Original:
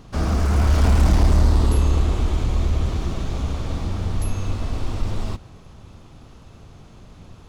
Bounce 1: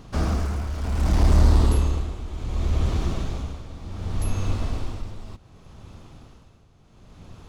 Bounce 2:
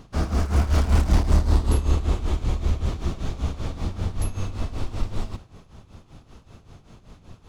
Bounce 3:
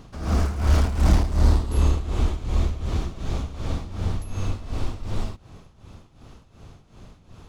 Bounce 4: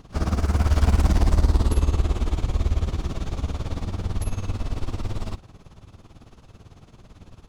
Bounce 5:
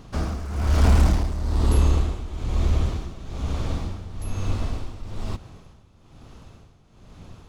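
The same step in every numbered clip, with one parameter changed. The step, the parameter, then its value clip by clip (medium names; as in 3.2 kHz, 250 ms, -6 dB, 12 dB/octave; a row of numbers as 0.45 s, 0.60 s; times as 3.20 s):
tremolo, rate: 0.67 Hz, 5.2 Hz, 2.7 Hz, 18 Hz, 1.1 Hz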